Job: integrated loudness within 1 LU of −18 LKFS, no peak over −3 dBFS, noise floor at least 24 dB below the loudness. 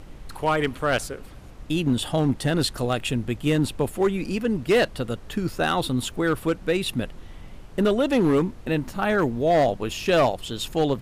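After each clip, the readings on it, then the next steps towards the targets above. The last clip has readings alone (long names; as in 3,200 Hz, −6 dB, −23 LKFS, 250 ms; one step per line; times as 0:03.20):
share of clipped samples 1.4%; peaks flattened at −14.0 dBFS; background noise floor −42 dBFS; target noise floor −48 dBFS; integrated loudness −24.0 LKFS; sample peak −14.0 dBFS; target loudness −18.0 LKFS
→ clipped peaks rebuilt −14 dBFS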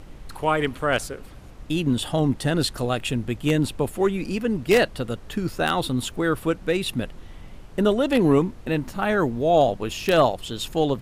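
share of clipped samples 0.0%; background noise floor −42 dBFS; target noise floor −48 dBFS
→ noise reduction from a noise print 6 dB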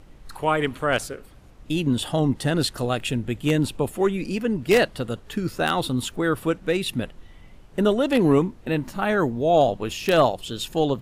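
background noise floor −48 dBFS; integrated loudness −23.5 LKFS; sample peak −5.0 dBFS; target loudness −18.0 LKFS
→ level +5.5 dB
brickwall limiter −3 dBFS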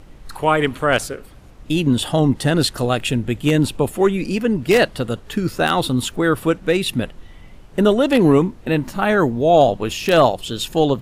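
integrated loudness −18.0 LKFS; sample peak −3.0 dBFS; background noise floor −42 dBFS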